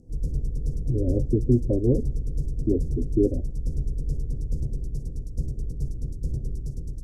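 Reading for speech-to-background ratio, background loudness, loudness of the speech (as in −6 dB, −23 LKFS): 6.0 dB, −32.0 LKFS, −26.0 LKFS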